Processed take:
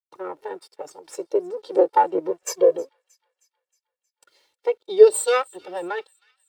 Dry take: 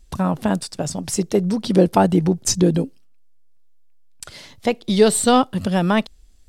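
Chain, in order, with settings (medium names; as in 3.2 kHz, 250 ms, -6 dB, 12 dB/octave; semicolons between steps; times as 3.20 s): comb filter that takes the minimum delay 2.2 ms; Chebyshev high-pass 420 Hz, order 2; treble shelf 10 kHz -5 dB; 2.30–2.76 s: comb 1.8 ms, depth 75%; 5.14–5.56 s: tilt EQ +2 dB/octave; word length cut 8-bit, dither none; feedback echo behind a high-pass 314 ms, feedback 65%, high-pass 1.9 kHz, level -16 dB; spectral contrast expander 1.5:1; trim +3.5 dB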